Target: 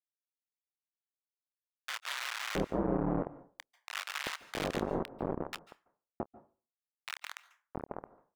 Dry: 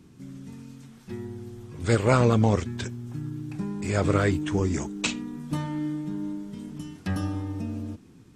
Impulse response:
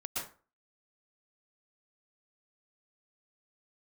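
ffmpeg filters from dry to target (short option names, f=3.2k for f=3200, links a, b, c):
-filter_complex "[0:a]aeval=exprs='val(0)*sin(2*PI*74*n/s)':c=same,acrossover=split=430[a][b];[b]acompressor=threshold=-42dB:ratio=2.5[c];[a][c]amix=inputs=2:normalize=0,aresample=8000,acrusher=bits=3:mix=0:aa=0.000001,aresample=44100,adynamicsmooth=sensitivity=5.5:basefreq=670,acrusher=bits=5:mode=log:mix=0:aa=0.000001,lowshelf=f=200:g=-12,acrossover=split=1100[d][e];[d]adelay=670[f];[f][e]amix=inputs=2:normalize=0,asplit=2[g][h];[1:a]atrim=start_sample=2205,adelay=27[i];[h][i]afir=irnorm=-1:irlink=0,volume=-19dB[j];[g][j]amix=inputs=2:normalize=0,volume=-3dB"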